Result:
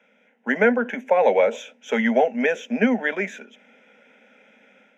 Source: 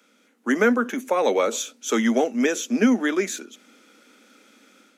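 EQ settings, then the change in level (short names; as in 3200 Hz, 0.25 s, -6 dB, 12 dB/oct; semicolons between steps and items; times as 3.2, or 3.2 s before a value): air absorption 240 m; fixed phaser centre 1200 Hz, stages 6; +7.0 dB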